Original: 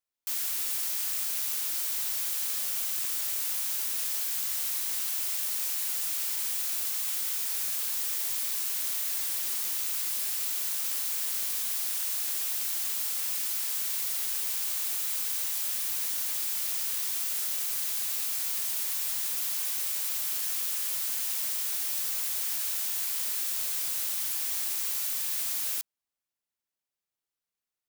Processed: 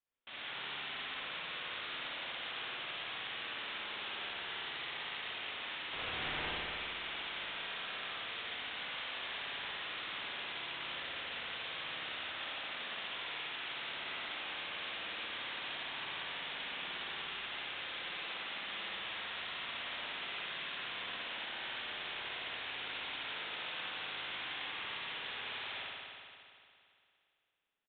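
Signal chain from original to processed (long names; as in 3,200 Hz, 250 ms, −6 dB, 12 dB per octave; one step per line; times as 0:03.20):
0:05.93–0:06.51: bit-depth reduction 6 bits, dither triangular
spring reverb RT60 2.4 s, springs 57 ms, chirp 30 ms, DRR −6 dB
downsampling to 8,000 Hz
level −2.5 dB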